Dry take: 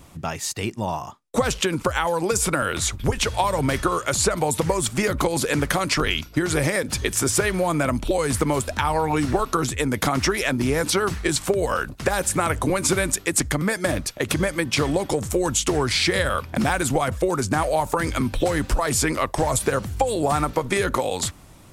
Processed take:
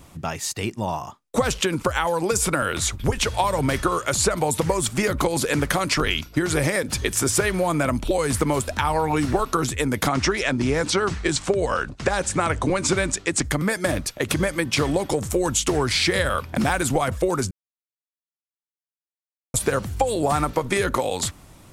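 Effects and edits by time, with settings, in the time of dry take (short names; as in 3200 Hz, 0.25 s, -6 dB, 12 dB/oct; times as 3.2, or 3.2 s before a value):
10.08–13.44 LPF 8100 Hz 24 dB/oct
17.51–19.54 mute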